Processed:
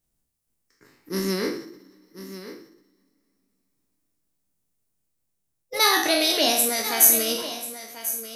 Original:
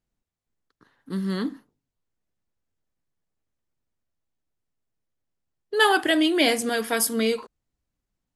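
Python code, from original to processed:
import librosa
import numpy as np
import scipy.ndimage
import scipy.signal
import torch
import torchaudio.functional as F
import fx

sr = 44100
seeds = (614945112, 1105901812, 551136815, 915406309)

p1 = fx.spec_trails(x, sr, decay_s=0.66)
p2 = fx.rider(p1, sr, range_db=4, speed_s=2.0)
p3 = fx.bass_treble(p2, sr, bass_db=2, treble_db=7)
p4 = p3 + fx.echo_single(p3, sr, ms=1041, db=-13.0, dry=0)
p5 = fx.rev_double_slope(p4, sr, seeds[0], early_s=0.48, late_s=3.4, knee_db=-22, drr_db=9.5)
p6 = fx.formant_shift(p5, sr, semitones=4)
p7 = fx.high_shelf(p6, sr, hz=5800.0, db=8.0)
y = p7 * 10.0 ** (-5.5 / 20.0)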